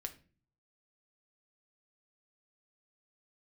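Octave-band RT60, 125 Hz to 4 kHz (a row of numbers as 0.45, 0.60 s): 0.80, 0.65, 0.45, 0.35, 0.35, 0.30 s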